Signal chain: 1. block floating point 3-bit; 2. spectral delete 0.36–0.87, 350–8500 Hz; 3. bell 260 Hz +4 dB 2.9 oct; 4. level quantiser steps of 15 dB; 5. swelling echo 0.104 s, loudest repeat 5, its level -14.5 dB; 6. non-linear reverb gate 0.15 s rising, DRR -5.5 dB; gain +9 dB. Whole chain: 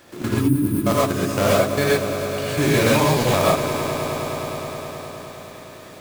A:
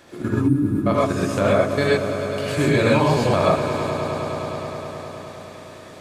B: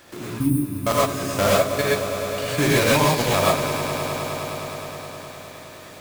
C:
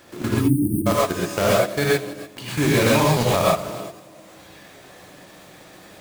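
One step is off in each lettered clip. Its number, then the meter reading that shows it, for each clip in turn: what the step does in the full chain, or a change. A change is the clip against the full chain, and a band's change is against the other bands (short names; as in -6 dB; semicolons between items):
1, distortion -9 dB; 3, loudness change -1.0 LU; 5, echo-to-direct 7.0 dB to 5.5 dB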